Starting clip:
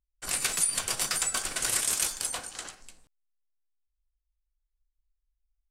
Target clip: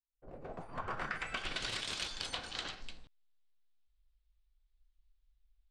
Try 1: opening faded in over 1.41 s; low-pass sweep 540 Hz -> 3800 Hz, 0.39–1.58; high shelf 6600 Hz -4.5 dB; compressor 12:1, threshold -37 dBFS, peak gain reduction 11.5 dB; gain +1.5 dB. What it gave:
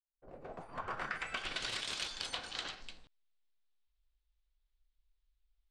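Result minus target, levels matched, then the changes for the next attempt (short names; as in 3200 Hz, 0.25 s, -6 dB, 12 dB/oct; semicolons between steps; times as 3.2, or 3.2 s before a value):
250 Hz band -3.0 dB
add after compressor: low shelf 260 Hz +6 dB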